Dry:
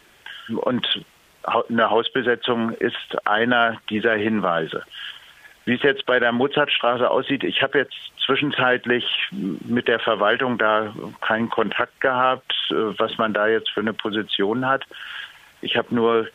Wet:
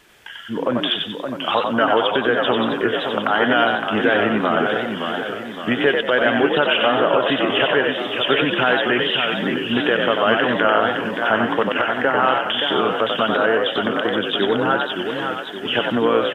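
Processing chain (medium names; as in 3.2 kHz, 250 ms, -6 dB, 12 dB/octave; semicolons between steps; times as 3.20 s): frequency-shifting echo 93 ms, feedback 35%, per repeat +54 Hz, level -4.5 dB; modulated delay 569 ms, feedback 51%, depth 149 cents, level -6.5 dB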